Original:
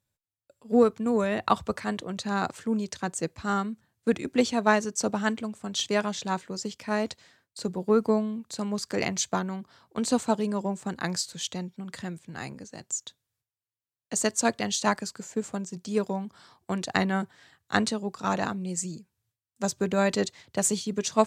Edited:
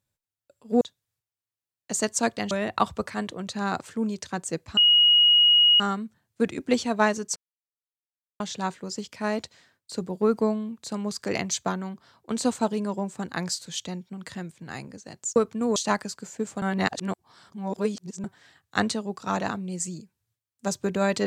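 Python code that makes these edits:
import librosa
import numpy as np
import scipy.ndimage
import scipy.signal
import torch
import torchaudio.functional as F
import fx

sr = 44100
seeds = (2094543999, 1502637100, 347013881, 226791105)

y = fx.edit(x, sr, fx.swap(start_s=0.81, length_s=0.4, other_s=13.03, other_length_s=1.7),
    fx.insert_tone(at_s=3.47, length_s=1.03, hz=2890.0, db=-14.0),
    fx.silence(start_s=5.03, length_s=1.04),
    fx.reverse_span(start_s=15.59, length_s=1.62), tone=tone)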